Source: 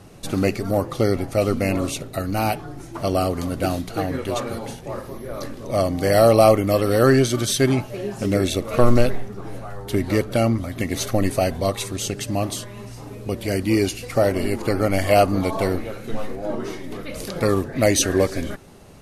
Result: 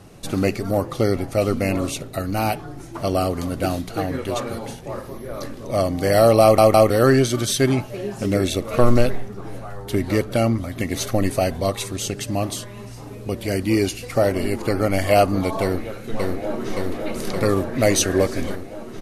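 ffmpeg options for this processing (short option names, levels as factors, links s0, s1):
-filter_complex "[0:a]asplit=2[s0][s1];[s1]afade=t=in:st=15.62:d=0.01,afade=t=out:st=16.75:d=0.01,aecho=0:1:570|1140|1710|2280|2850|3420|3990|4560|5130|5700|6270|6840:0.707946|0.566357|0.453085|0.362468|0.289975|0.23198|0.185584|0.148467|0.118774|0.0950189|0.0760151|0.0608121[s2];[s0][s2]amix=inputs=2:normalize=0,asplit=4[s3][s4][s5][s6];[s3]atrim=end=6.582[s7];[s4]atrim=start=6.418:end=6.582[s8];[s5]atrim=start=6.418:end=6.582[s9];[s6]atrim=start=6.898[s10];[s7][s8]acrossfade=d=0.004:c1=hsin:c2=hsin[s11];[s11][s9]acrossfade=d=0.004:c1=hsin:c2=hsin[s12];[s12][s10]acrossfade=d=0.004:c1=hsin:c2=hsin"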